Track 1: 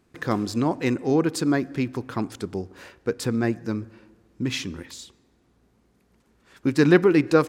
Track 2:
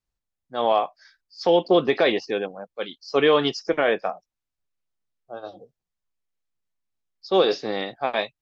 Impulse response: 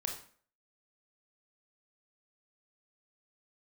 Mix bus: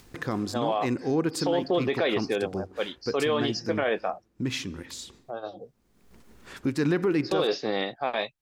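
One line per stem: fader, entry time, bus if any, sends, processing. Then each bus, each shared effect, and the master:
-3.0 dB, 0.00 s, no send, expander -52 dBFS
0.0 dB, 0.00 s, no send, dry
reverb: off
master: upward compressor, threshold -32 dBFS; limiter -16.5 dBFS, peak gain reduction 11 dB

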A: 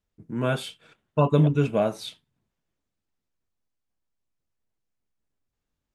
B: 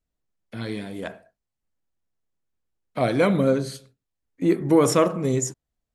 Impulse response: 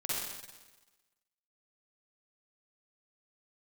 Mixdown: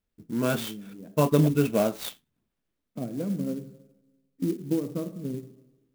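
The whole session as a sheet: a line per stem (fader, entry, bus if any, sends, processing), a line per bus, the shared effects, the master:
-0.5 dB, 0.00 s, no send, graphic EQ 125/250/4000 Hz -5/+4/+3 dB
-7.0 dB, 0.00 s, send -17 dB, transient shaper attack +8 dB, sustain -1 dB; band-pass 210 Hz, Q 2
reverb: on, RT60 1.2 s, pre-delay 43 ms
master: bell 870 Hz -3 dB; clock jitter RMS 0.042 ms

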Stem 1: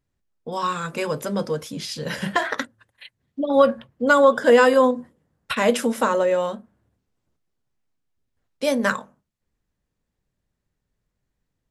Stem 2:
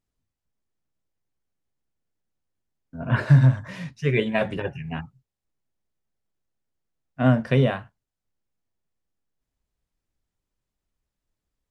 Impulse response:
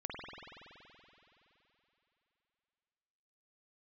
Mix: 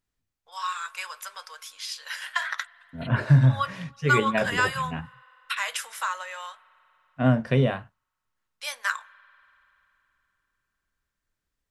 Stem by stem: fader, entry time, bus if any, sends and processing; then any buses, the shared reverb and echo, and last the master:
-3.0 dB, 0.00 s, send -22 dB, HPF 1100 Hz 24 dB/oct
-2.0 dB, 0.00 s, no send, dry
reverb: on, RT60 3.3 s, pre-delay 47 ms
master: dry

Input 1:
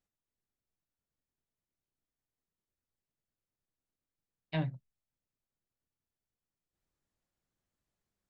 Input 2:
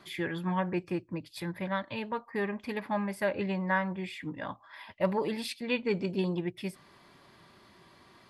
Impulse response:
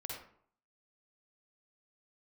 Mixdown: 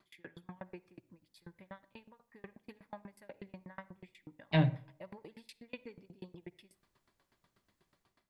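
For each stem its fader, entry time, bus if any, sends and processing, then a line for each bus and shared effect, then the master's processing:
-3.0 dB, 0.00 s, send -12.5 dB, AGC gain up to 7.5 dB
-11.5 dB, 0.00 s, send -15.5 dB, dB-ramp tremolo decaying 8.2 Hz, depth 35 dB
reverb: on, RT60 0.60 s, pre-delay 45 ms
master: dry

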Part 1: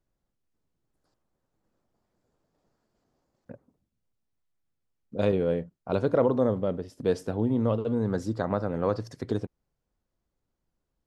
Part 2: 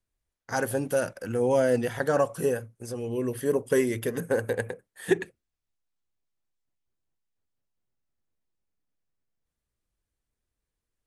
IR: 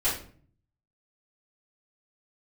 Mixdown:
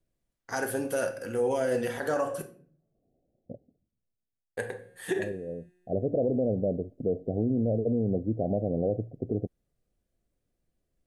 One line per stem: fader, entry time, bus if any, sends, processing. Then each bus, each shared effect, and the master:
+2.0 dB, 0.00 s, no send, steep low-pass 740 Hz 96 dB/oct; auto duck -14 dB, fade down 0.95 s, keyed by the second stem
+1.5 dB, 0.00 s, muted 2.42–4.57, send -14 dB, low shelf 170 Hz -7.5 dB; resonator 180 Hz, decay 1.7 s, mix 40%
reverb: on, RT60 0.50 s, pre-delay 3 ms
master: limiter -18.5 dBFS, peak gain reduction 7.5 dB

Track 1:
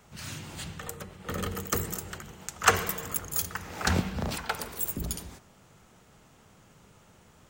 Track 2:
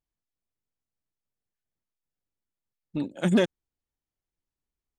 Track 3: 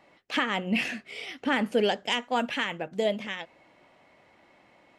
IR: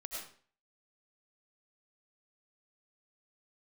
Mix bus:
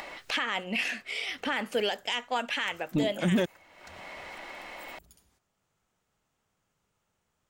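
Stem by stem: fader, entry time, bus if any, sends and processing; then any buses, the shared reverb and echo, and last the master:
-19.0 dB, 0.00 s, no bus, send -16 dB, low shelf 420 Hz -7.5 dB; auto duck -8 dB, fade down 0.30 s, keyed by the third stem
+3.0 dB, 0.00 s, bus A, no send, notch 410 Hz
+2.5 dB, 0.00 s, bus A, no send, HPF 870 Hz 6 dB/oct
bus A: 0.0 dB, upward compressor, threshold -28 dBFS; limiter -18.5 dBFS, peak gain reduction 9 dB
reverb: on, RT60 0.45 s, pre-delay 60 ms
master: low shelf 63 Hz +7.5 dB

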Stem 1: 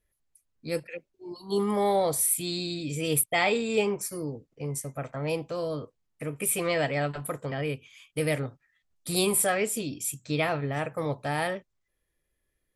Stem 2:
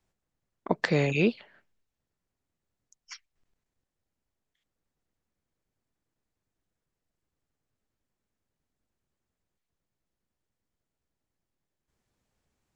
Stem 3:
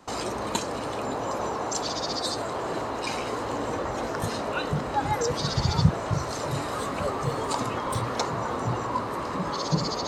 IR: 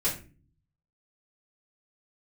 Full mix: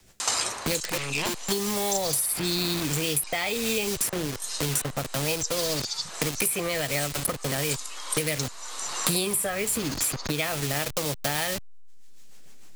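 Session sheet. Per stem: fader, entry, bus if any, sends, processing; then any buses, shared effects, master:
+3.0 dB, 0.00 s, no send, level-crossing sampler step -33 dBFS; compressor, threshold -30 dBFS, peak gain reduction 10.5 dB
-8.5 dB, 0.00 s, no send, rotary speaker horn 6.7 Hz; wavefolder -25 dBFS
+2.5 dB, 0.20 s, no send, steep low-pass 11000 Hz 36 dB/oct; differentiator; auto duck -11 dB, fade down 0.20 s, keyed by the first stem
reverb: off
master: high shelf 2400 Hz +9.5 dB; three-band squash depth 100%

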